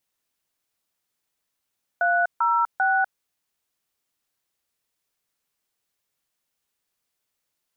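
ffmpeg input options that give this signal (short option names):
-f lavfi -i "aevalsrc='0.0944*clip(min(mod(t,0.394),0.247-mod(t,0.394))/0.002,0,1)*(eq(floor(t/0.394),0)*(sin(2*PI*697*mod(t,0.394))+sin(2*PI*1477*mod(t,0.394)))+eq(floor(t/0.394),1)*(sin(2*PI*941*mod(t,0.394))+sin(2*PI*1336*mod(t,0.394)))+eq(floor(t/0.394),2)*(sin(2*PI*770*mod(t,0.394))+sin(2*PI*1477*mod(t,0.394))))':d=1.182:s=44100"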